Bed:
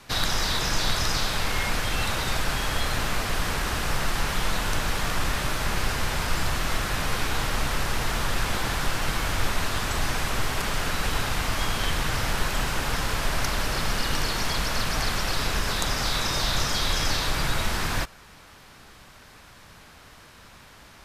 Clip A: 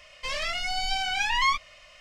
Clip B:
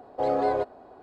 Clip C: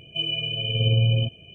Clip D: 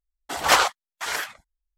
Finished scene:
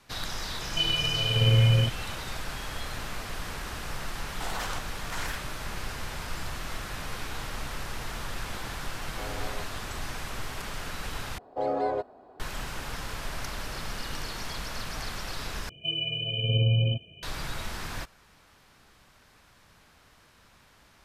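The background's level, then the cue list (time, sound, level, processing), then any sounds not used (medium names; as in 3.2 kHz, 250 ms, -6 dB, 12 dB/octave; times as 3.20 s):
bed -9.5 dB
0.61 s: add C -0.5 dB
4.11 s: add D -4 dB + compression, threshold -29 dBFS
8.99 s: add B -15 dB + spectrum-flattening compressor 2:1
11.38 s: replace with B -3.5 dB
15.69 s: replace with C -3.5 dB
not used: A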